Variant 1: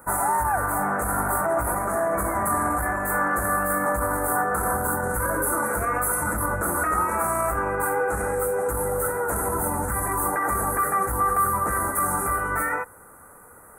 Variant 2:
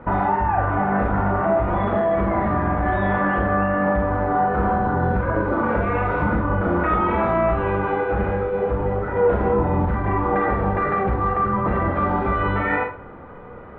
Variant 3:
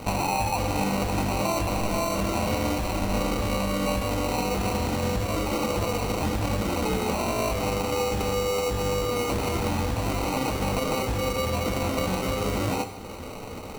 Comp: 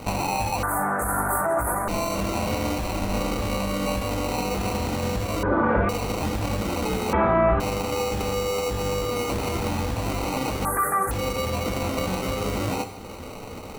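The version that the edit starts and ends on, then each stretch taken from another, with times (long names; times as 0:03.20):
3
0:00.63–0:01.88: punch in from 1
0:05.43–0:05.89: punch in from 2
0:07.13–0:07.60: punch in from 2
0:10.65–0:11.11: punch in from 1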